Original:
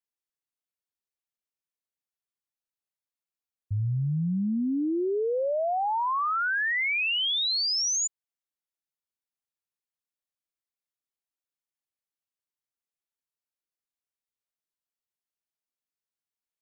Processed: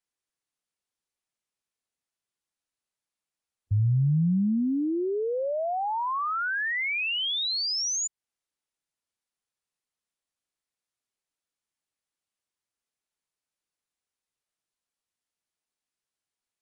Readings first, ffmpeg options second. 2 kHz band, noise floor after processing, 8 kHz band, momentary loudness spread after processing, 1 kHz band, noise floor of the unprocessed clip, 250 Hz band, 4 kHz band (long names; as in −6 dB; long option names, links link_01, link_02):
−2.0 dB, below −85 dBFS, can't be measured, 5 LU, −1.5 dB, below −85 dBFS, +2.0 dB, −2.0 dB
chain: -filter_complex "[0:a]acrossover=split=200[link_01][link_02];[link_02]acompressor=threshold=-37dB:ratio=2[link_03];[link_01][link_03]amix=inputs=2:normalize=0,volume=4.5dB" -ar 24000 -c:a aac -b:a 96k